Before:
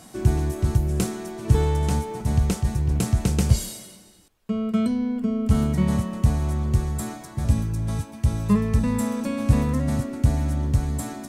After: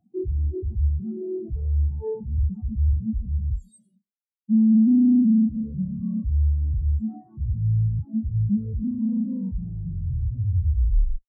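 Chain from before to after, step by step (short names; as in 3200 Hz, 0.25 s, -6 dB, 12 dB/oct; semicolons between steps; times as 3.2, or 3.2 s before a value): tape stop at the end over 2.10 s; fuzz box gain 44 dB, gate -53 dBFS; spectral expander 4:1; gain -2.5 dB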